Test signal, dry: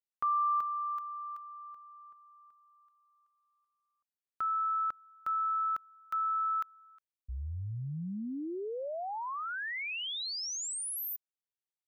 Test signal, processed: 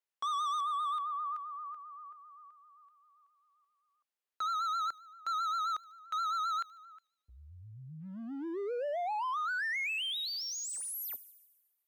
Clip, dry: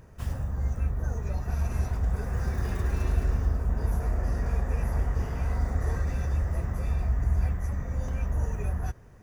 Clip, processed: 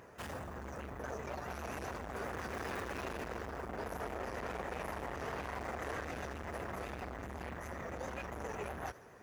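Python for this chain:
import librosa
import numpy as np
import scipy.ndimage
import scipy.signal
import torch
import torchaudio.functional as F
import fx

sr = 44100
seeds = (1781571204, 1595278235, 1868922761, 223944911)

p1 = fx.low_shelf(x, sr, hz=85.0, db=-10.5)
p2 = np.clip(p1, -10.0 ** (-36.5 / 20.0), 10.0 ** (-36.5 / 20.0))
p3 = p2 + fx.echo_wet_highpass(p2, sr, ms=74, feedback_pct=66, hz=4600.0, wet_db=-15.0, dry=0)
p4 = fx.vibrato(p3, sr, rate_hz=7.6, depth_cents=81.0)
p5 = scipy.signal.sosfilt(scipy.signal.butter(2, 57.0, 'highpass', fs=sr, output='sos'), p4)
p6 = fx.bass_treble(p5, sr, bass_db=-13, treble_db=-6)
y = F.gain(torch.from_numpy(p6), 4.5).numpy()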